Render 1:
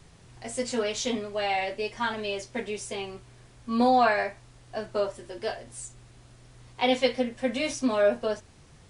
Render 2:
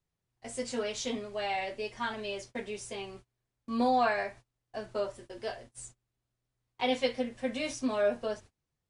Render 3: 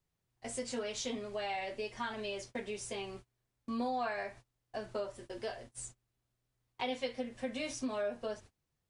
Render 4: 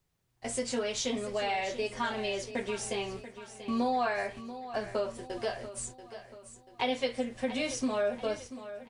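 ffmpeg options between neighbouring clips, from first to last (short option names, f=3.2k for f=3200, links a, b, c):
-af "agate=range=-27dB:threshold=-43dB:ratio=16:detection=peak,volume=-5.5dB"
-af "acompressor=threshold=-38dB:ratio=2.5,volume=1dB"
-af "aecho=1:1:686|1372|2058|2744|3430:0.224|0.105|0.0495|0.0232|0.0109,volume=6dB"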